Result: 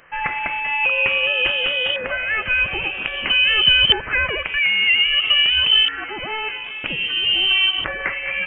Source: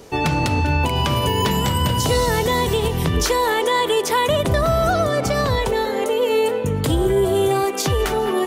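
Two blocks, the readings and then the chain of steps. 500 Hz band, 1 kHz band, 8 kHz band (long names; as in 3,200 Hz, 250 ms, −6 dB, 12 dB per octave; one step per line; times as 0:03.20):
−13.0 dB, −9.0 dB, below −40 dB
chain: auto-filter high-pass saw down 0.51 Hz 420–1,800 Hz
voice inversion scrambler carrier 3,500 Hz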